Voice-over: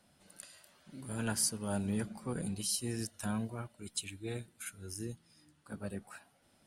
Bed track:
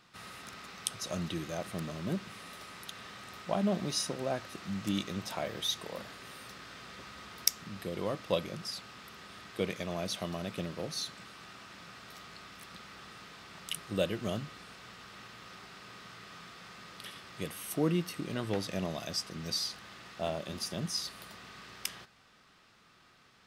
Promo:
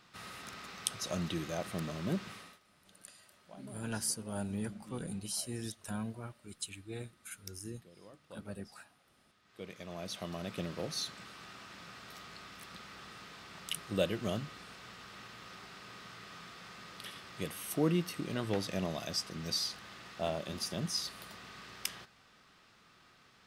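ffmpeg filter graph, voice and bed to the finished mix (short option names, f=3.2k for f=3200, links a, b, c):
-filter_complex "[0:a]adelay=2650,volume=-3dB[a];[1:a]volume=21dB,afade=t=out:st=2.3:d=0.3:silence=0.0841395,afade=t=in:st=9.42:d=1.33:silence=0.0891251[b];[a][b]amix=inputs=2:normalize=0"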